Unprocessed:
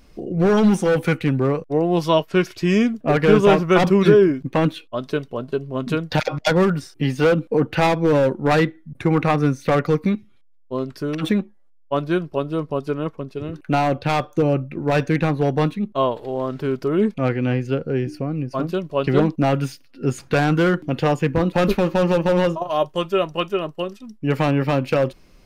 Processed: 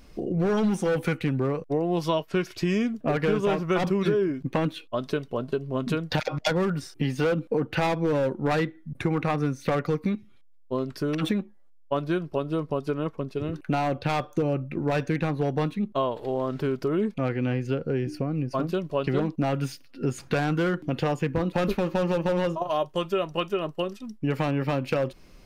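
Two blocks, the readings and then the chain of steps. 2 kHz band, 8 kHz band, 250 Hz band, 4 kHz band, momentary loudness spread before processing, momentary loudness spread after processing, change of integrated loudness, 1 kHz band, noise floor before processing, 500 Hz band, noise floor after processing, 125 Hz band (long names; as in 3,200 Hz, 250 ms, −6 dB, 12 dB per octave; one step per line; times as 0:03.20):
−7.0 dB, can't be measured, −6.5 dB, −6.0 dB, 10 LU, 6 LU, −7.0 dB, −7.0 dB, −51 dBFS, −7.0 dB, −51 dBFS, −6.5 dB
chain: downward compressor 3 to 1, threshold −24 dBFS, peak gain reduction 12 dB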